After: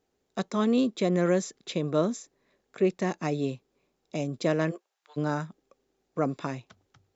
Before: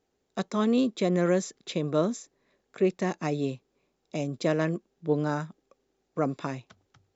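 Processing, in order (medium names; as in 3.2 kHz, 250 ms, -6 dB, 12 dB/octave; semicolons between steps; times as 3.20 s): 4.70–5.16 s: high-pass 370 Hz -> 1.5 kHz 24 dB/octave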